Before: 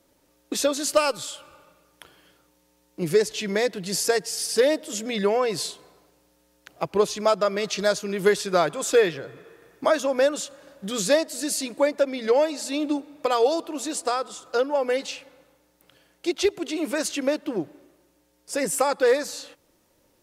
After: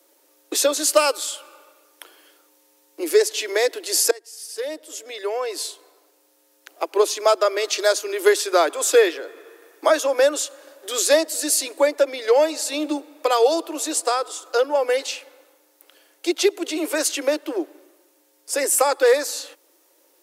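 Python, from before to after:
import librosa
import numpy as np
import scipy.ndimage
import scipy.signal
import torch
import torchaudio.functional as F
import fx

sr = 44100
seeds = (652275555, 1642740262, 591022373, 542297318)

y = fx.edit(x, sr, fx.fade_in_from(start_s=4.11, length_s=3.06, floor_db=-22.5), tone=tone)
y = scipy.signal.sosfilt(scipy.signal.butter(12, 300.0, 'highpass', fs=sr, output='sos'), y)
y = fx.high_shelf(y, sr, hz=8600.0, db=9.5)
y = F.gain(torch.from_numpy(y), 3.5).numpy()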